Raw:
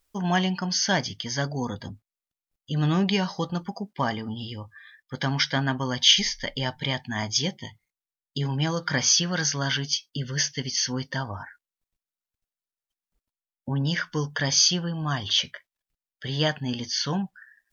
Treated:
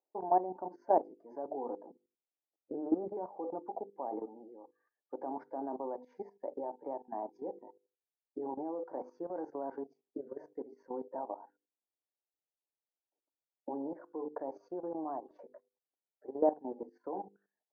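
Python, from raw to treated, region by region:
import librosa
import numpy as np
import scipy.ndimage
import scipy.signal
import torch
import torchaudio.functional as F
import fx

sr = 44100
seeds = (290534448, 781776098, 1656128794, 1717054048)

y = fx.chain(x, sr, fx.cheby1_bandstop(low_hz=500.0, high_hz=1300.0, order=4),
    fx.peak_eq(hz=1600.0, db=-9.0, octaves=2.5),
    fx.leveller(passes=1), at=(2.74, 3.17))
y = scipy.signal.sosfilt(scipy.signal.ellip(3, 1.0, 60, [310.0, 850.0], 'bandpass', fs=sr, output='sos'), y)
y = fx.hum_notches(y, sr, base_hz=50, count=10)
y = fx.level_steps(y, sr, step_db=14)
y = F.gain(torch.from_numpy(y), 4.0).numpy()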